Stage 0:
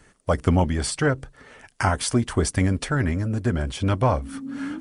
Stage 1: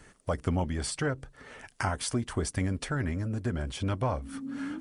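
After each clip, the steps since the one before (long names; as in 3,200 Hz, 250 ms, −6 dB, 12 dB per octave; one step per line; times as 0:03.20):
downward compressor 1.5 to 1, threshold −42 dBFS, peak gain reduction 10 dB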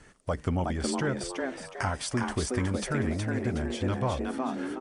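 low-pass filter 9,400 Hz 12 dB per octave
on a send: echo with shifted repeats 367 ms, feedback 36%, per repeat +130 Hz, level −3.5 dB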